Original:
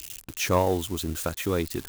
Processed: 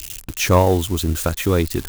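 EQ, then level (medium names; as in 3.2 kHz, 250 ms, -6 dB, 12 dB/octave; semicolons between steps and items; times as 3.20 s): bass shelf 86 Hz +11 dB; +7.0 dB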